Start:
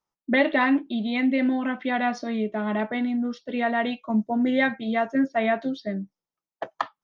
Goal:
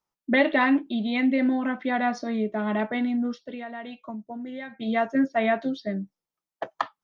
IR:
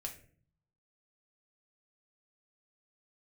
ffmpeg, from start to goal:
-filter_complex "[0:a]asettb=1/sr,asplit=3[a][b][c];[a]atrim=end=1.344[d];[b]atrim=start=1.34:end=2.59,asetpts=PTS-STARTPTS,afade=t=in:d=0.004:c=qsin,afade=t=out:st=1.246:d=0.004:c=qsin,equalizer=f=2.9k:t=o:w=0.58:g=-6[e];[c]atrim=start=2.586[f];[d][e]acrossfade=d=0.004:c1=hsin:c2=qsin[g];[g][f]acrossfade=d=0.004:c1=qsin:c2=hsin,asplit=3[h][i][j];[h]afade=t=out:st=3.35:d=0.02[k];[i]acompressor=threshold=-34dB:ratio=8,afade=t=in:st=3.35:d=0.02,afade=t=out:st=4.79:d=0.02[l];[j]afade=t=in:st=4.79:d=0.02[m];[k][l][m]amix=inputs=3:normalize=0"

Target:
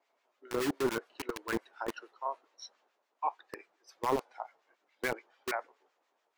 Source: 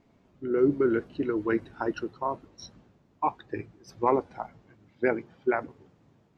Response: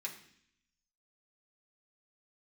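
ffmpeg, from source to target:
-filter_complex "[0:a]acrossover=split=530[a][b];[a]acrusher=bits=3:mix=0:aa=0.000001[c];[b]acontrast=56[d];[c][d]amix=inputs=2:normalize=0,acrossover=split=1200[e][f];[e]aeval=exprs='val(0)*(1-0.7/2+0.7/2*cos(2*PI*7*n/s))':c=same[g];[f]aeval=exprs='val(0)*(1-0.7/2-0.7/2*cos(2*PI*7*n/s))':c=same[h];[g][h]amix=inputs=2:normalize=0,volume=-7.5dB"

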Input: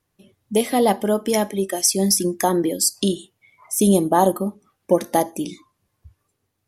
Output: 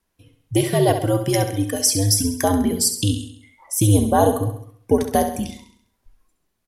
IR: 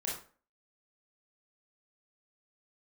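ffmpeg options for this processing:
-af "afreqshift=-94,aecho=1:1:67|134|201|268|335|402:0.355|0.177|0.0887|0.0444|0.0222|0.0111"

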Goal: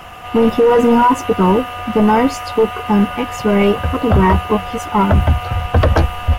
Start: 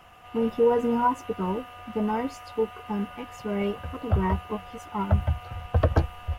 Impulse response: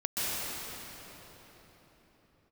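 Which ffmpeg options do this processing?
-af "apsyclip=24dB,volume=-6.5dB"

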